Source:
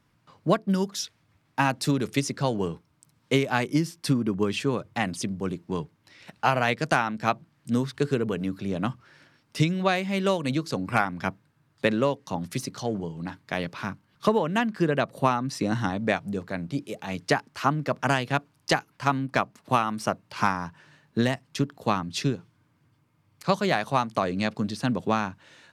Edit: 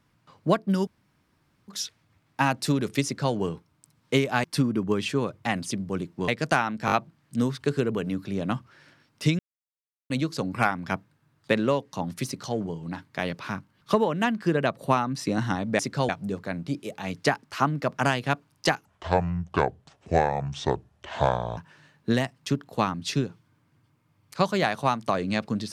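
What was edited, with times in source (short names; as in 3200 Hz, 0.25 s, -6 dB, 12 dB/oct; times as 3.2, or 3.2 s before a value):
0.87 insert room tone 0.81 s
2.23–2.53 copy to 16.13
3.63–3.95 cut
5.79–6.68 cut
7.26 stutter 0.02 s, 4 plays
9.73–10.44 mute
18.89–20.66 speed 65%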